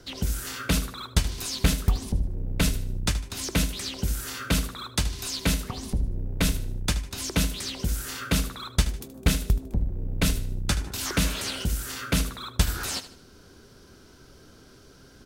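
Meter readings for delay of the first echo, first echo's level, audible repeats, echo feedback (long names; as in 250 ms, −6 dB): 76 ms, −14.0 dB, 3, 37%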